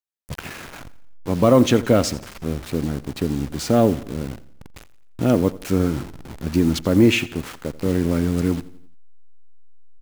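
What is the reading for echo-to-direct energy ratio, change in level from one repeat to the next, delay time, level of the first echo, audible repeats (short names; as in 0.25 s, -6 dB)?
-17.5 dB, -7.0 dB, 86 ms, -18.5 dB, 3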